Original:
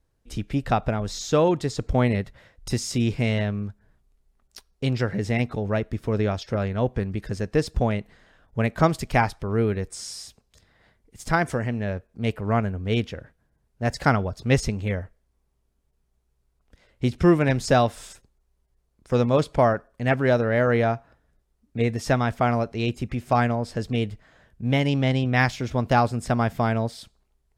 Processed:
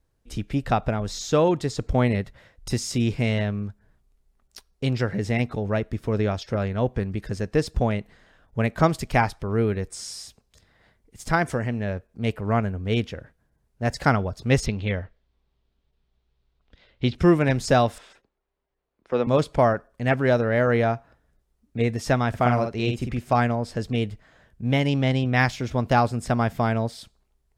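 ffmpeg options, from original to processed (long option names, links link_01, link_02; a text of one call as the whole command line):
ffmpeg -i in.wav -filter_complex "[0:a]asettb=1/sr,asplit=3[link_01][link_02][link_03];[link_01]atrim=end=14.664[link_04];[link_02]atrim=start=14.66:end=17.15,asetpts=PTS-STARTPTS,afade=type=in:duration=0.004:curve=qsin,afade=type=out:start_time=2.486:duration=0.004:curve=qsin,lowpass=frequency=3700:width_type=q:width=2.4[link_05];[link_03]atrim=start=17.146[link_06];[link_04][link_05]acrossfade=duration=0.004:curve1=hsin:curve2=qsin[link_07];[link_07][link_06]acrossfade=duration=0.004:curve1=qsin:curve2=hsin,asettb=1/sr,asplit=3[link_08][link_09][link_10];[link_08]atrim=end=17.984[link_11];[link_09]atrim=start=17.98:end=19.27,asetpts=PTS-STARTPTS,afade=type=in:duration=0.004:curve=qsin,afade=type=out:start_time=1.286:duration=0.004:curve=qsin,acrossover=split=240 3800:gain=0.158 1 0.0794[link_12][link_13][link_14];[link_12][link_13][link_14]amix=inputs=3:normalize=0[link_15];[link_10]atrim=start=19.266[link_16];[link_11][link_15]acrossfade=duration=0.004:curve1=hsin:curve2=qsin[link_17];[link_17][link_16]acrossfade=duration=0.004:curve1=qsin:curve2=hsin,asettb=1/sr,asplit=3[link_18][link_19][link_20];[link_18]atrim=end=22.294[link_21];[link_19]atrim=start=22.29:end=23.19,asetpts=PTS-STARTPTS,afade=type=in:duration=0.004:curve=qsin,afade=type=out:start_time=0.896:duration=0.004:curve=qsin,asplit=2[link_22][link_23];[link_23]adelay=49,volume=-5dB[link_24];[link_22][link_24]amix=inputs=2:normalize=0,atrim=end_sample=39690[link_25];[link_20]atrim=start=23.186[link_26];[link_21][link_25]acrossfade=duration=0.004:curve1=hsin:curve2=qsin[link_27];[link_27][link_26]acrossfade=duration=0.004:curve1=qsin:curve2=hsin" out.wav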